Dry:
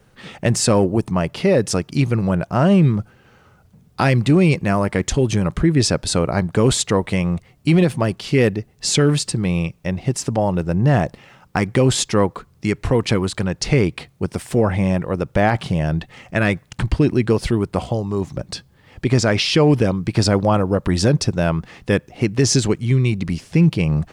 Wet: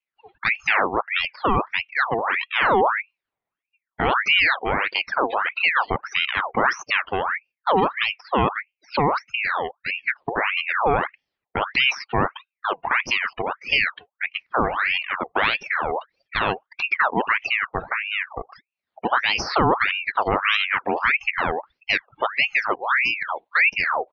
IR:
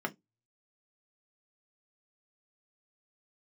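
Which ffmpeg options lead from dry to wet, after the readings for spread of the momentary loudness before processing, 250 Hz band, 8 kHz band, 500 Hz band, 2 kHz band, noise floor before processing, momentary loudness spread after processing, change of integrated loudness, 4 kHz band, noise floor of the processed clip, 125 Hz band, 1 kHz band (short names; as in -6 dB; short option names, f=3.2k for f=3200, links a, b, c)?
8 LU, -14.5 dB, -20.5 dB, -7.5 dB, +7.5 dB, -54 dBFS, 8 LU, -3.0 dB, 0.0 dB, under -85 dBFS, -19.5 dB, +5.0 dB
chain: -af "afftdn=nr=32:nf=-27,aresample=8000,aresample=44100,aeval=exprs='val(0)*sin(2*PI*1600*n/s+1600*0.65/1.6*sin(2*PI*1.6*n/s))':c=same,volume=-2dB"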